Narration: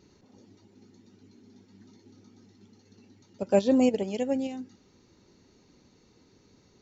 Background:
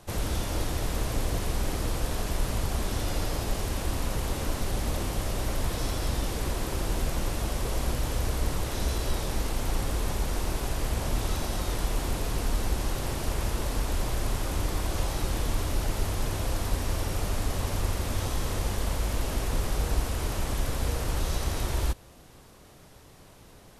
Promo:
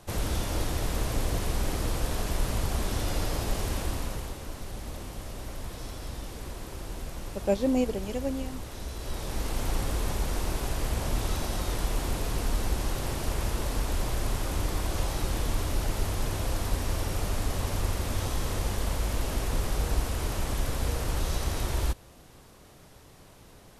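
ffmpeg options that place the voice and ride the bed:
-filter_complex "[0:a]adelay=3950,volume=0.668[s0];[1:a]volume=2.66,afade=t=out:st=3.74:d=0.64:silence=0.354813,afade=t=in:st=8.94:d=0.66:silence=0.375837[s1];[s0][s1]amix=inputs=2:normalize=0"

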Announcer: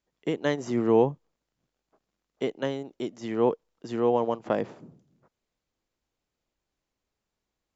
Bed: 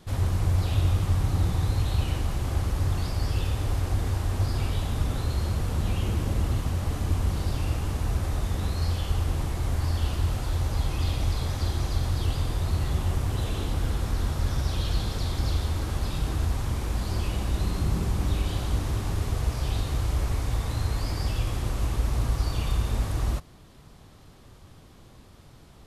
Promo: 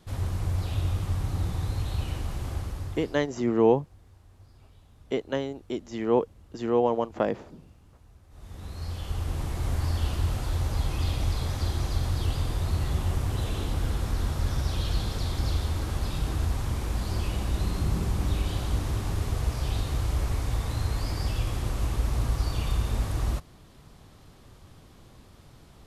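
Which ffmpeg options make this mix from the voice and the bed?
-filter_complex "[0:a]adelay=2700,volume=1.06[s0];[1:a]volume=13.3,afade=t=out:st=2.46:d=0.83:silence=0.0668344,afade=t=in:st=8.29:d=1.4:silence=0.0446684[s1];[s0][s1]amix=inputs=2:normalize=0"

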